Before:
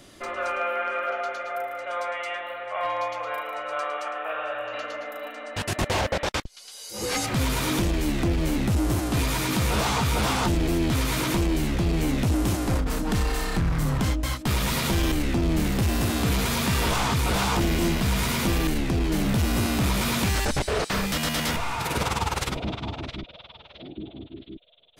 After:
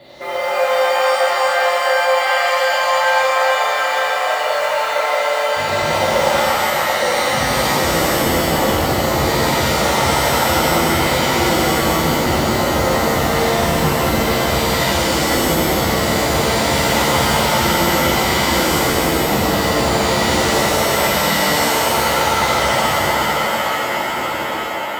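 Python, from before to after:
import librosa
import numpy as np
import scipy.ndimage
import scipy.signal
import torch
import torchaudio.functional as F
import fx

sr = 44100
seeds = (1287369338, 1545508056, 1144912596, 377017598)

p1 = fx.freq_compress(x, sr, knee_hz=3400.0, ratio=4.0)
p2 = fx.small_body(p1, sr, hz=(560.0, 2000.0), ring_ms=25, db=14)
p3 = p2 + fx.echo_banded(p2, sr, ms=867, feedback_pct=70, hz=840.0, wet_db=-8, dry=0)
p4 = fx.mod_noise(p3, sr, seeds[0], snr_db=22)
p5 = scipy.signal.sosfilt(scipy.signal.butter(2, 66.0, 'highpass', fs=sr, output='sos'), p4)
p6 = fx.peak_eq(p5, sr, hz=880.0, db=10.5, octaves=0.31)
p7 = fx.over_compress(p6, sr, threshold_db=-26.0, ratio=-1.0)
p8 = p6 + (p7 * librosa.db_to_amplitude(-1.5))
p9 = fx.rev_shimmer(p8, sr, seeds[1], rt60_s=2.7, semitones=7, shimmer_db=-2, drr_db=-7.5)
y = p9 * librosa.db_to_amplitude(-9.5)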